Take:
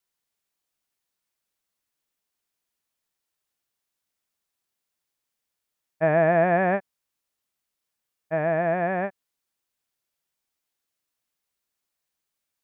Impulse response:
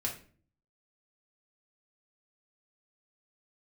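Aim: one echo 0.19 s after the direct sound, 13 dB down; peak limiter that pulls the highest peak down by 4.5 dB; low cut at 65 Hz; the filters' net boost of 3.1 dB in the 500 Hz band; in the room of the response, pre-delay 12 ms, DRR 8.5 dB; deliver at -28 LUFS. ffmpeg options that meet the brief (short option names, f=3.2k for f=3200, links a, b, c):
-filter_complex "[0:a]highpass=65,equalizer=f=500:t=o:g=4.5,alimiter=limit=-11.5dB:level=0:latency=1,aecho=1:1:190:0.224,asplit=2[a][b];[1:a]atrim=start_sample=2205,adelay=12[c];[b][c]afir=irnorm=-1:irlink=0,volume=-11.5dB[d];[a][d]amix=inputs=2:normalize=0,volume=-6dB"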